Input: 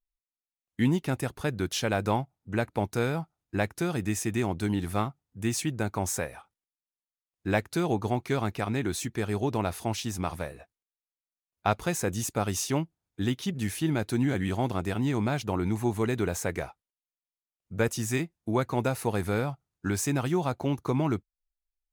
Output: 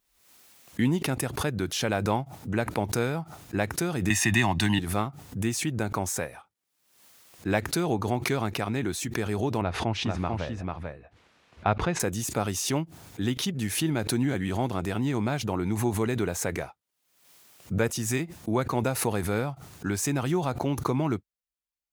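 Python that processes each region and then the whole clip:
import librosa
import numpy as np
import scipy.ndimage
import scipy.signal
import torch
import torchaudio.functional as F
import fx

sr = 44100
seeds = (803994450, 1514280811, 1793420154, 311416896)

y = fx.chain(x, sr, fx.peak_eq(hz=2500.0, db=10.5, octaves=2.7),
    fx.comb(ms=1.1, depth=0.78),
    fx.band_squash(depth_pct=40), at=(4.1, 4.79))
y = fx.chain(y, sr, fx.lowpass(hz=2900.0, slope=12),
    fx.low_shelf(hz=74.0, db=11.0),
    fx.echo_single(ms=443, db=-3.5), at=(9.61, 12.0))
y = scipy.signal.sosfilt(scipy.signal.butter(2, 78.0, 'highpass', fs=sr, output='sos'), y)
y = fx.pre_swell(y, sr, db_per_s=68.0)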